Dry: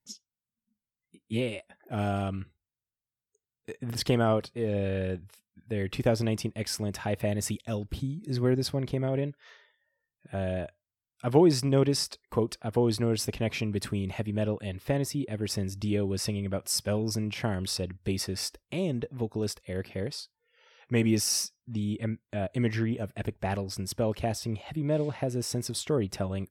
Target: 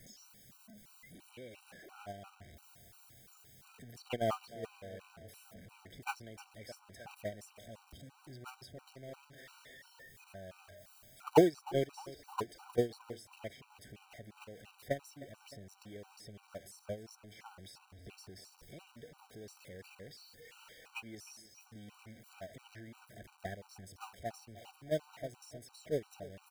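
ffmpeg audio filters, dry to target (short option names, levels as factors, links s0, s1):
-filter_complex "[0:a]aeval=exprs='val(0)+0.5*0.0251*sgn(val(0))':c=same,acrossover=split=520|1100[s0][s1][s2];[s0]acompressor=threshold=0.0158:ratio=4[s3];[s1]acompressor=threshold=0.0224:ratio=4[s4];[s2]acompressor=threshold=0.0158:ratio=4[s5];[s3][s4][s5]amix=inputs=3:normalize=0,agate=range=0.0316:threshold=0.0447:ratio=16:detection=peak,asplit=2[s6][s7];[s7]aecho=0:1:308|616|924|1232|1540:0.133|0.0773|0.0449|0.026|0.0151[s8];[s6][s8]amix=inputs=2:normalize=0,afftfilt=real='re*gt(sin(2*PI*2.9*pts/sr)*(1-2*mod(floor(b*sr/1024/770),2)),0)':imag='im*gt(sin(2*PI*2.9*pts/sr)*(1-2*mod(floor(b*sr/1024/770),2)),0)':win_size=1024:overlap=0.75,volume=5.01"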